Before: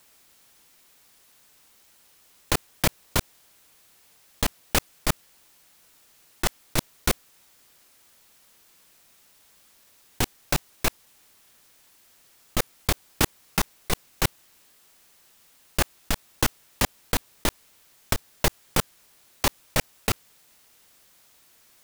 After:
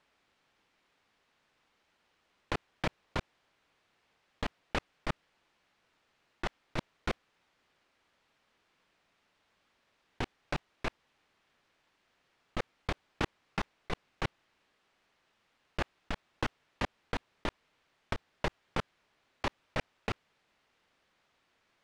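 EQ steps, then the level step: LPF 2800 Hz 12 dB/oct; low shelf 180 Hz -3.5 dB; -7.5 dB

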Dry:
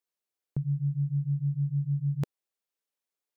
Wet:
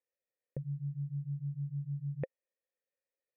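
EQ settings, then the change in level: vocal tract filter e; +10.5 dB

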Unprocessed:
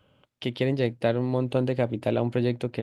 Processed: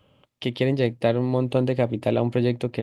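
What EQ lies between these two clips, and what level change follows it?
notch 1500 Hz, Q 8.3; +3.0 dB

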